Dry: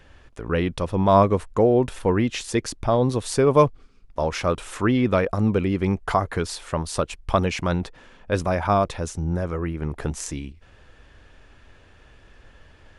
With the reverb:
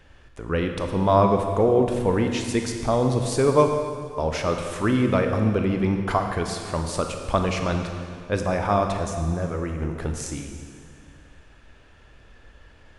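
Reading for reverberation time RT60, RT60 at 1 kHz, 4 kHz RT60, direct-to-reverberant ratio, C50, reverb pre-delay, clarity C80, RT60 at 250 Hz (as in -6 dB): 2.1 s, 2.1 s, 1.9 s, 4.0 dB, 5.0 dB, 21 ms, 6.0 dB, 2.3 s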